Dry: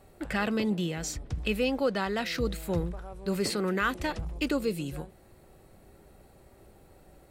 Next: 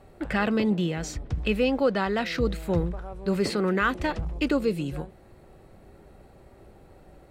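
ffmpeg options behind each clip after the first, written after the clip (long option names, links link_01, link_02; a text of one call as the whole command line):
ffmpeg -i in.wav -af "lowpass=frequency=3000:poles=1,volume=4.5dB" out.wav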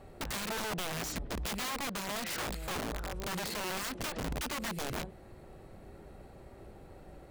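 ffmpeg -i in.wav -af "acompressor=threshold=-31dB:ratio=4,aeval=exprs='(mod(35.5*val(0)+1,2)-1)/35.5':channel_layout=same" out.wav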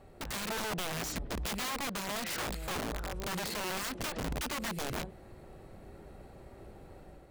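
ffmpeg -i in.wav -af "dynaudnorm=framelen=120:gausssize=5:maxgain=4dB,volume=-3.5dB" out.wav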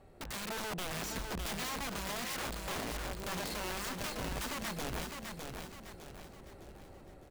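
ffmpeg -i in.wav -af "aecho=1:1:607|1214|1821|2428|3035:0.562|0.236|0.0992|0.0417|0.0175,volume=-3.5dB" out.wav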